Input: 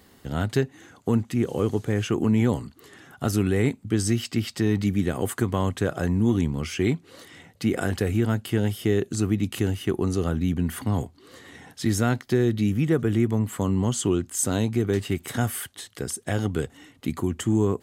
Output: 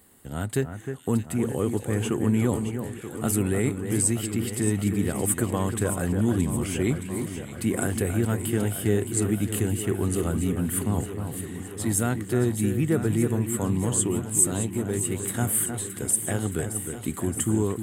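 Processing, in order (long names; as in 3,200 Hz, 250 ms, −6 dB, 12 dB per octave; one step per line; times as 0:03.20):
high shelf with overshoot 6,900 Hz +7.5 dB, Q 3
automatic gain control gain up to 3.5 dB
delay that swaps between a low-pass and a high-pass 310 ms, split 2,300 Hz, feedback 81%, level −7.5 dB
level −5.5 dB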